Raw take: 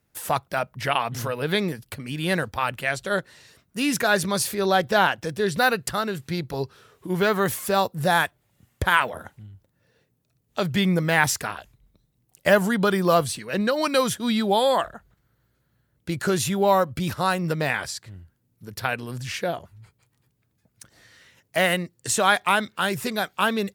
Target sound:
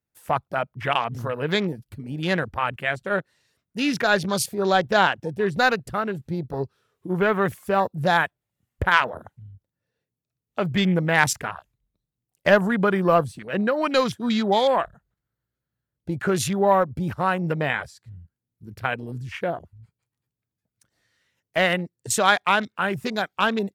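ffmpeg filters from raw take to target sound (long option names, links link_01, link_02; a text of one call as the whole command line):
ffmpeg -i in.wav -af "aeval=exprs='0.668*(cos(1*acos(clip(val(0)/0.668,-1,1)))-cos(1*PI/2))+0.0473*(cos(3*acos(clip(val(0)/0.668,-1,1)))-cos(3*PI/2))+0.0119*(cos(4*acos(clip(val(0)/0.668,-1,1)))-cos(4*PI/2))':channel_layout=same,afwtdn=0.0178,volume=2.5dB" out.wav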